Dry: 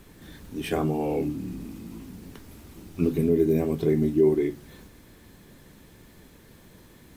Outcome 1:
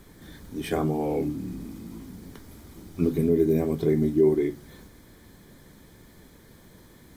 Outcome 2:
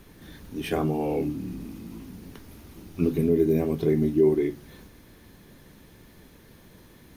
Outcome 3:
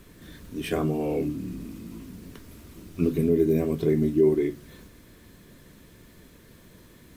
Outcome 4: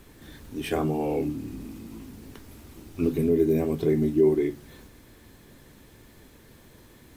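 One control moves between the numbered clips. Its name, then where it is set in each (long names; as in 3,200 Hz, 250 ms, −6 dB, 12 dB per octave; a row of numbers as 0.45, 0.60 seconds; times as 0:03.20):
notch filter, centre frequency: 2,700, 7,700, 820, 180 Hertz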